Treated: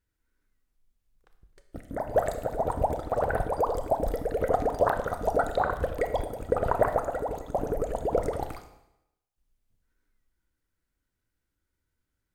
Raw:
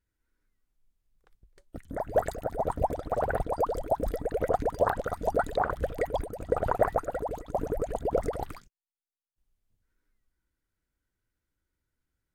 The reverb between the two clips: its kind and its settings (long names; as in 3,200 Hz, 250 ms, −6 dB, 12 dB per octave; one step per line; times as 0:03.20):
four-comb reverb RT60 0.85 s, combs from 25 ms, DRR 8 dB
level +1 dB